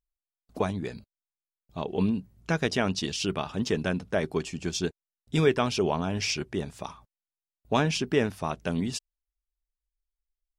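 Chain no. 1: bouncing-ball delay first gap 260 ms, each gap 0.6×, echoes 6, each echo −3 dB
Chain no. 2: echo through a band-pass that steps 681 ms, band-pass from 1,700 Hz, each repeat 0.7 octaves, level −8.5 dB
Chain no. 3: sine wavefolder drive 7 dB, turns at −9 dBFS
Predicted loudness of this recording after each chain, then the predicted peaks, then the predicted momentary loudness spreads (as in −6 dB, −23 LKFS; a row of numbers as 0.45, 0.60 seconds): −26.5, −29.0, −19.5 LKFS; −9.0, −9.0, −9.0 dBFS; 13, 19, 11 LU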